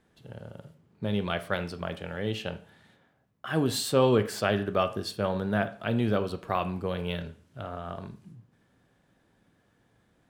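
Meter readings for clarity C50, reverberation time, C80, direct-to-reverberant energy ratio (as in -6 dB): 15.0 dB, 0.40 s, 19.5 dB, 10.0 dB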